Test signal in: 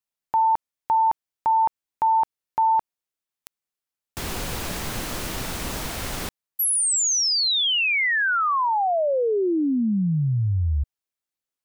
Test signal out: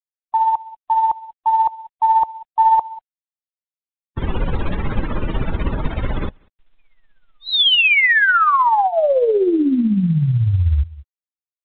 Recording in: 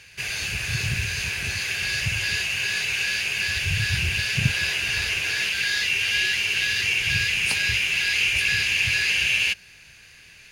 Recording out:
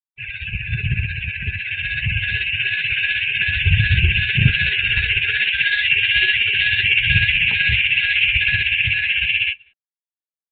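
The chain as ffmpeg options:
-filter_complex "[0:a]afftfilt=real='re*gte(hypot(re,im),0.0251)':imag='im*gte(hypot(re,im),0.0251)':win_size=1024:overlap=0.75,bandreject=f=710:w=12,dynaudnorm=f=230:g=21:m=1.78,acrusher=bits=7:mix=0:aa=0.5,tremolo=f=16:d=0.46,asplit=2[s0][s1];[s1]adelay=192.4,volume=0.112,highshelf=f=4000:g=-4.33[s2];[s0][s2]amix=inputs=2:normalize=0,afftdn=nr=15:nf=-30,lowshelf=f=76:g=8,aeval=exprs='0.473*(cos(1*acos(clip(val(0)/0.473,-1,1)))-cos(1*PI/2))+0.0133*(cos(2*acos(clip(val(0)/0.473,-1,1)))-cos(2*PI/2))':c=same,volume=1.78" -ar 8000 -c:a pcm_mulaw

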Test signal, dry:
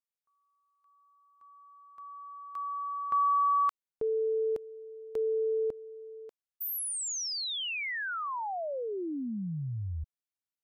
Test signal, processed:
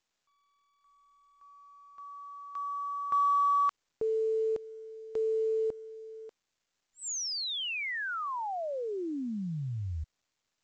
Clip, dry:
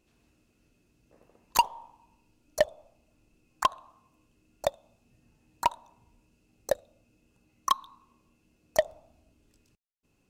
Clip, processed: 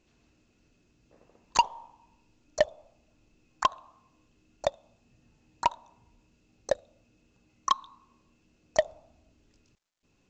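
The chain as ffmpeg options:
-ar 16000 -c:a pcm_mulaw

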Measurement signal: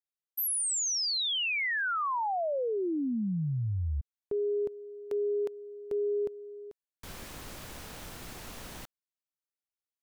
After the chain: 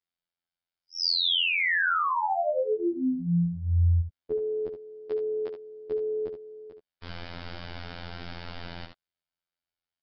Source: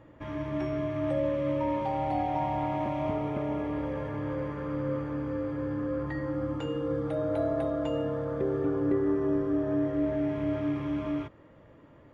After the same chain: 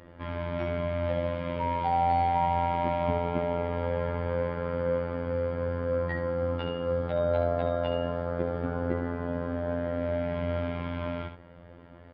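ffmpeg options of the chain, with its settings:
-af "afftfilt=real='hypot(re,im)*cos(PI*b)':imag='0':win_size=2048:overlap=0.75,aresample=11025,aresample=44100,aecho=1:1:11|71:0.15|0.422,volume=2.37"

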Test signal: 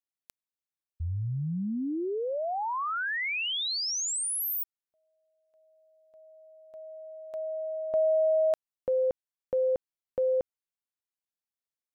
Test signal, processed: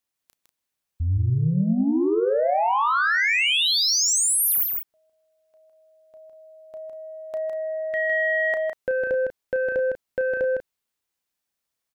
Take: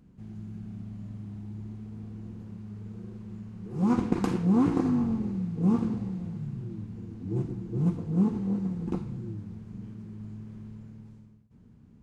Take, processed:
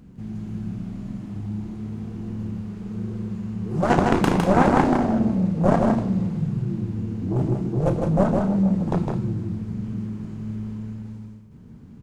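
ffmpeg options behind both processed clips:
-af "aeval=exprs='0.335*(cos(1*acos(clip(val(0)/0.335,-1,1)))-cos(1*PI/2))+0.119*(cos(7*acos(clip(val(0)/0.335,-1,1)))-cos(7*PI/2))':c=same,aecho=1:1:32.07|157.4|192.4:0.316|0.631|0.282,acontrast=52"

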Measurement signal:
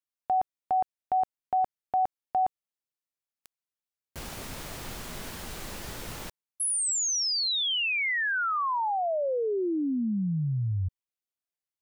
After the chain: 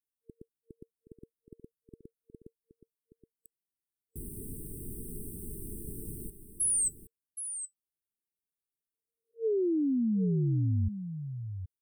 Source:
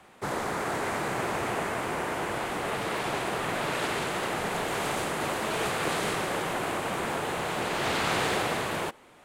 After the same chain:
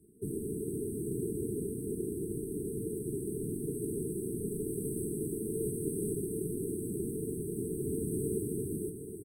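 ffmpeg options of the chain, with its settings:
-filter_complex "[0:a]afftfilt=real='re*(1-between(b*sr/4096,460,8000))':imag='im*(1-between(b*sr/4096,460,8000))':win_size=4096:overlap=0.75,asplit=2[s0][s1];[s1]aecho=0:1:772:0.316[s2];[s0][s2]amix=inputs=2:normalize=0"

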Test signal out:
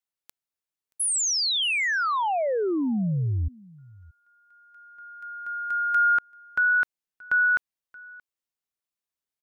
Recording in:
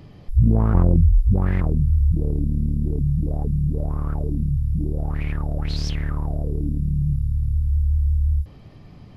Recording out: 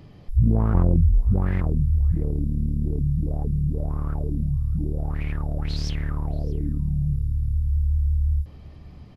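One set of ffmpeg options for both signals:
-af "aecho=1:1:627:0.0668,volume=0.75"

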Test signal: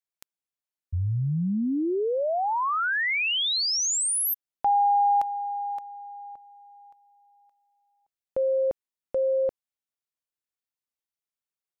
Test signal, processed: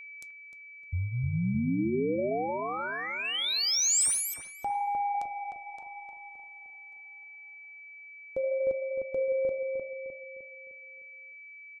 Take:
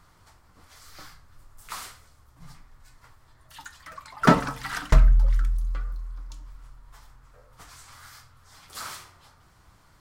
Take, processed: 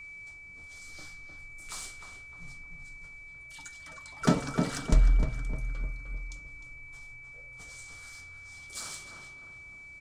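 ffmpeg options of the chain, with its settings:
-filter_complex "[0:a]equalizer=f=1000:t=o:w=1:g=-8,equalizer=f=2000:t=o:w=1:g=-8,equalizer=f=8000:t=o:w=1:g=10,asplit=2[s0][s1];[s1]acompressor=threshold=0.0316:ratio=6:attack=47:release=65:knee=6,volume=0.891[s2];[s0][s2]amix=inputs=2:normalize=0,flanger=delay=3.2:depth=9.7:regen=-75:speed=0.8:shape=sinusoidal,adynamicsmooth=sensitivity=2.5:basefreq=7700,aeval=exprs='val(0)+0.01*sin(2*PI*2300*n/s)':c=same,asplit=2[s3][s4];[s4]adelay=305,lowpass=f=1700:p=1,volume=0.631,asplit=2[s5][s6];[s6]adelay=305,lowpass=f=1700:p=1,volume=0.48,asplit=2[s7][s8];[s8]adelay=305,lowpass=f=1700:p=1,volume=0.48,asplit=2[s9][s10];[s10]adelay=305,lowpass=f=1700:p=1,volume=0.48,asplit=2[s11][s12];[s12]adelay=305,lowpass=f=1700:p=1,volume=0.48,asplit=2[s13][s14];[s14]adelay=305,lowpass=f=1700:p=1,volume=0.48[s15];[s3][s5][s7][s9][s11][s13][s15]amix=inputs=7:normalize=0,volume=0.708"

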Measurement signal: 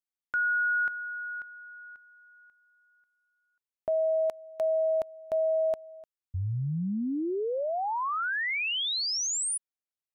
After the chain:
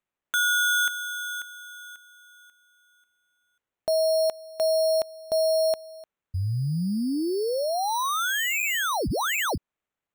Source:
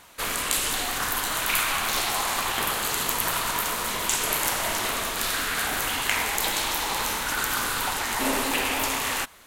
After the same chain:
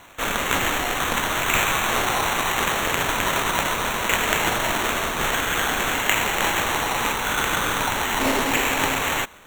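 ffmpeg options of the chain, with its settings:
-af "acrusher=samples=9:mix=1:aa=0.000001,volume=1.58"

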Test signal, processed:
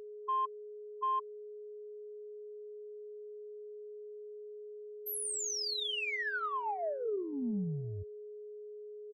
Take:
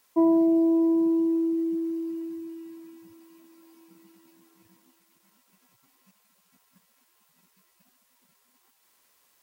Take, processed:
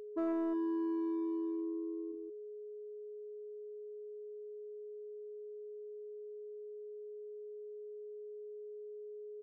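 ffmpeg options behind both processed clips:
-filter_complex "[0:a]afftfilt=real='re*gte(hypot(re,im),0.224)':imag='im*gte(hypot(re,im),0.224)':win_size=1024:overlap=0.75,acrossover=split=360|370[s0][s1][s2];[s1]asoftclip=type=hard:threshold=0.0168[s3];[s0][s3][s2]amix=inputs=3:normalize=0,aeval=exprs='val(0)+0.01*sin(2*PI*420*n/s)':c=same,asoftclip=type=tanh:threshold=0.106,aecho=1:1:4.7:0.38,volume=0.447"

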